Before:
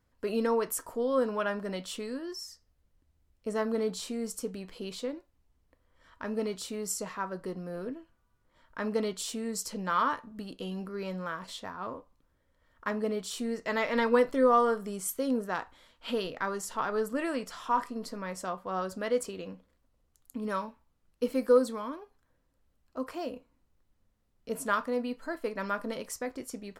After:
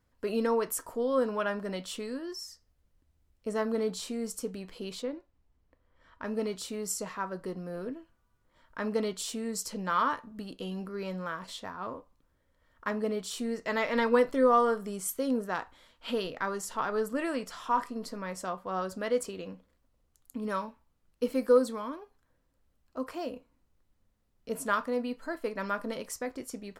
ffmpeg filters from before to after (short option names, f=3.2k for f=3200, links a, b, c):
-filter_complex "[0:a]asettb=1/sr,asplit=3[a][b][c];[a]atrim=end=5.024[d];[b]atrim=start=5.02:end=6.24,asetpts=PTS-STARTPTS,afade=t=in:d=0.004:c=qsin,afade=t=out:st=1.216:d=0.004:c=qsin,lowpass=f=3.1k:p=1[e];[c]atrim=start=6.236[f];[d][e]acrossfade=d=0.004:c1=hsin:c2=qsin[g];[g][f]acrossfade=d=0.004:c1=qsin:c2=hsin"